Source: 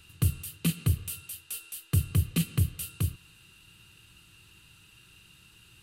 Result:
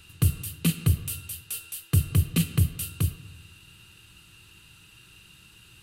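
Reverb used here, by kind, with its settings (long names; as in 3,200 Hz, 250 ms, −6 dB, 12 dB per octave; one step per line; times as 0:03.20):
comb and all-pass reverb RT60 1.3 s, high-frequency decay 0.3×, pre-delay 25 ms, DRR 16 dB
level +3.5 dB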